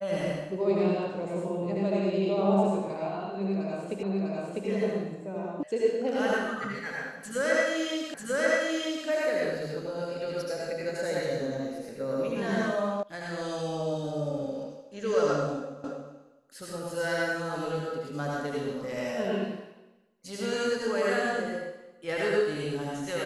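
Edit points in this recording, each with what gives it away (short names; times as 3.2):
4.03 repeat of the last 0.65 s
5.63 sound cut off
8.14 repeat of the last 0.94 s
13.03 sound cut off
15.84 repeat of the last 0.28 s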